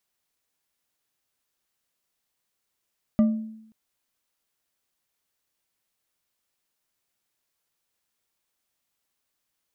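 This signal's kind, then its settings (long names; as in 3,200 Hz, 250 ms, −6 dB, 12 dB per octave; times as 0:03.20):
struck glass bar, length 0.53 s, lowest mode 220 Hz, decay 0.78 s, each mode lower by 11.5 dB, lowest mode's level −13.5 dB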